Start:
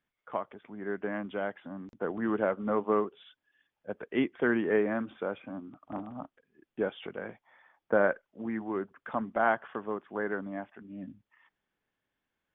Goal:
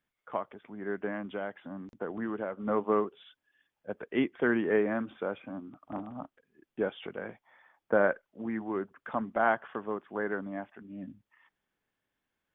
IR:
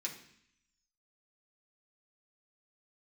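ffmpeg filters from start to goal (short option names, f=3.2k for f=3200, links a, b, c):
-filter_complex "[0:a]asettb=1/sr,asplit=3[a][b][c];[a]atrim=end=1.094[d];[b]atrim=start=1.09:end=2.68,asetpts=PTS-STARTPTS,afade=t=in:d=0.004:c=qsin,afade=t=out:st=1.586:d=0.004:c=qsin,acompressor=threshold=-31dB:ratio=6[e];[c]atrim=start=2.676[f];[d][e]acrossfade=d=0.004:c1=hsin:c2=qsin[g];[g][f]acrossfade=d=0.004:c1=qsin:c2=hsin"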